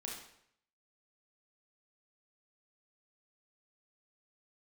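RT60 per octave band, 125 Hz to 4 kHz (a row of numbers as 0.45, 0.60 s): 0.80, 0.70, 0.70, 0.70, 0.70, 0.65 s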